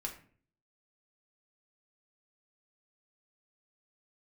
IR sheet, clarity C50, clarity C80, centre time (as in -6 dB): 10.0 dB, 14.0 dB, 17 ms